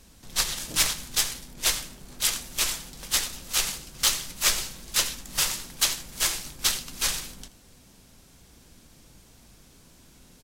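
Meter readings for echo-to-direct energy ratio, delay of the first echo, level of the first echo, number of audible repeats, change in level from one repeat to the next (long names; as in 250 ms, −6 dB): −19.5 dB, 81 ms, −20.0 dB, 2, −12.0 dB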